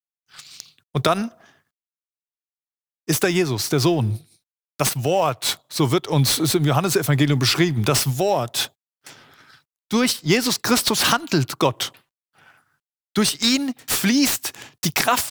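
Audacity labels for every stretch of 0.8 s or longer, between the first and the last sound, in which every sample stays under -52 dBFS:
1.600000	3.080000	silence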